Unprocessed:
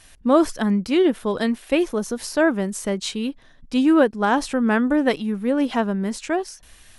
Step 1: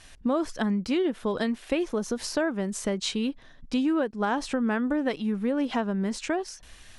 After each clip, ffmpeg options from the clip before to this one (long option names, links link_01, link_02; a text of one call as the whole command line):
ffmpeg -i in.wav -af "lowpass=8000,acompressor=threshold=-24dB:ratio=4" out.wav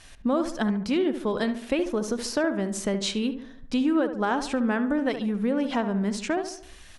ffmpeg -i in.wav -filter_complex "[0:a]asplit=2[link_01][link_02];[link_02]adelay=71,lowpass=frequency=1800:poles=1,volume=-9dB,asplit=2[link_03][link_04];[link_04]adelay=71,lowpass=frequency=1800:poles=1,volume=0.51,asplit=2[link_05][link_06];[link_06]adelay=71,lowpass=frequency=1800:poles=1,volume=0.51,asplit=2[link_07][link_08];[link_08]adelay=71,lowpass=frequency=1800:poles=1,volume=0.51,asplit=2[link_09][link_10];[link_10]adelay=71,lowpass=frequency=1800:poles=1,volume=0.51,asplit=2[link_11][link_12];[link_12]adelay=71,lowpass=frequency=1800:poles=1,volume=0.51[link_13];[link_01][link_03][link_05][link_07][link_09][link_11][link_13]amix=inputs=7:normalize=0,volume=1dB" out.wav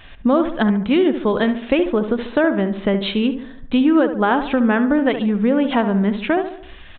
ffmpeg -i in.wav -af "aresample=8000,aresample=44100,volume=8.5dB" out.wav